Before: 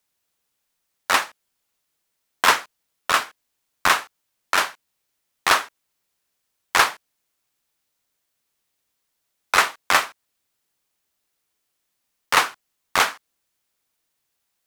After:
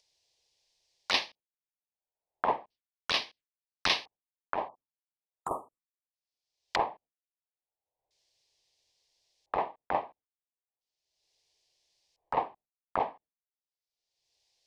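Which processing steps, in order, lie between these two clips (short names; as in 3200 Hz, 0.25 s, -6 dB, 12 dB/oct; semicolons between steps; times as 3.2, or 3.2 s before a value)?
spectral delete 4.68–6.14, 1300–7000 Hz; expander -39 dBFS; LFO low-pass square 0.37 Hz 850–5000 Hz; envelope phaser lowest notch 230 Hz, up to 1400 Hz, full sweep at -22.5 dBFS; upward compressor, threshold -37 dBFS; gain -6.5 dB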